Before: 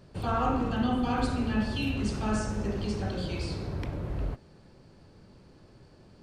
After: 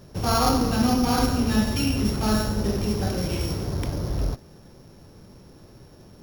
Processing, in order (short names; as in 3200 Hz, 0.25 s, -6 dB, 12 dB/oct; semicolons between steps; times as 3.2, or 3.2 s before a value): sample sorter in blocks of 8 samples; gain +6.5 dB